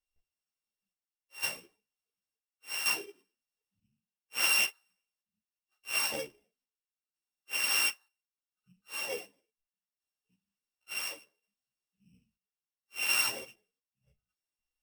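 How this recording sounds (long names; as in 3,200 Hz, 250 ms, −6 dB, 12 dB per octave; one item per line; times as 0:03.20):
a buzz of ramps at a fixed pitch in blocks of 16 samples
chopped level 0.7 Hz, depth 60%, duty 65%
a shimmering, thickened sound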